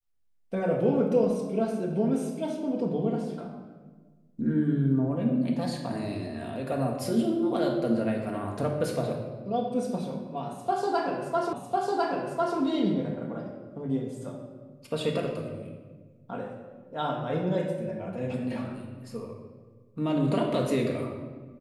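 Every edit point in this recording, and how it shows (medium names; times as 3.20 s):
11.53 s: repeat of the last 1.05 s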